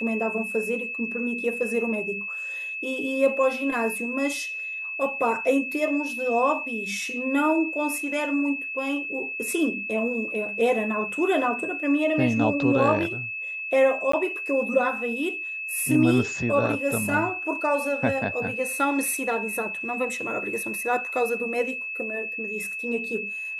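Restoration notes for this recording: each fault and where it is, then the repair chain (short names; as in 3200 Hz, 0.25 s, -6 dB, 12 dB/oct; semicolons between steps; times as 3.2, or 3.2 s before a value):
tone 2600 Hz -30 dBFS
14.12–14.13 gap 14 ms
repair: notch 2600 Hz, Q 30; interpolate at 14.12, 14 ms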